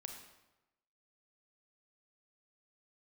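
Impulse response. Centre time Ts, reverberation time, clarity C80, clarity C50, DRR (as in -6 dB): 32 ms, 1.0 s, 7.5 dB, 5.0 dB, 3.5 dB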